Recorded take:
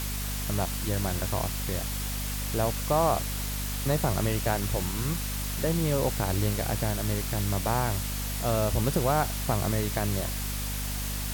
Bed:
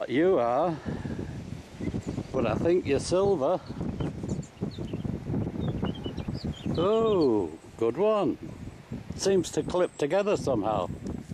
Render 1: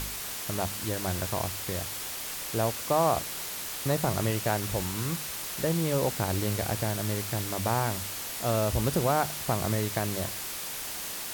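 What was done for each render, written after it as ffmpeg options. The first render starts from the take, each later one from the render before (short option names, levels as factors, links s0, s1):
-af "bandreject=f=50:t=h:w=4,bandreject=f=100:t=h:w=4,bandreject=f=150:t=h:w=4,bandreject=f=200:t=h:w=4,bandreject=f=250:t=h:w=4"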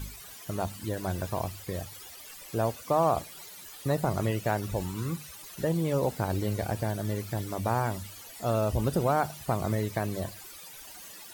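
-af "afftdn=nr=15:nf=-37"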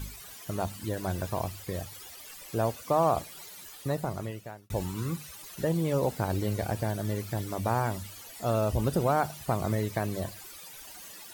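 -filter_complex "[0:a]asplit=2[s0][s1];[s0]atrim=end=4.7,asetpts=PTS-STARTPTS,afade=t=out:st=3.62:d=1.08[s2];[s1]atrim=start=4.7,asetpts=PTS-STARTPTS,afade=t=in:d=0.004:c=hsin[s3];[s2][s3]concat=n=2:v=0:a=1"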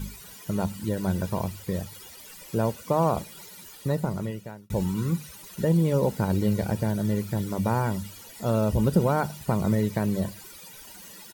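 -af "equalizer=f=200:t=o:w=0.79:g=14.5,aecho=1:1:2.1:0.38"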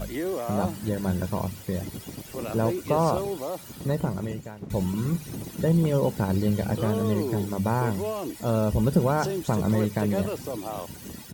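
-filter_complex "[1:a]volume=0.473[s0];[0:a][s0]amix=inputs=2:normalize=0"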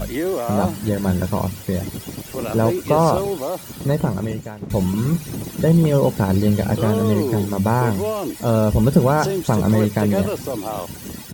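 -af "volume=2.24"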